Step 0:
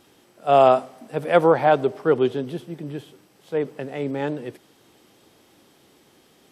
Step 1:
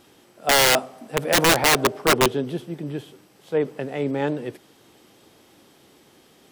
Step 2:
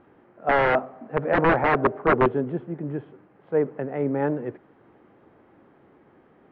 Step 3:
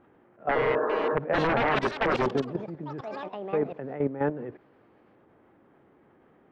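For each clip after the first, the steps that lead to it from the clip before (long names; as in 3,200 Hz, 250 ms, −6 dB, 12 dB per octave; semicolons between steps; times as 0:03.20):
wrap-around overflow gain 12.5 dB; level +2 dB
low-pass filter 1,800 Hz 24 dB per octave
delay with pitch and tempo change per echo 548 ms, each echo +6 semitones, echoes 3, each echo −6 dB; output level in coarse steps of 12 dB; healed spectral selection 0:00.57–0:01.12, 210–1,800 Hz after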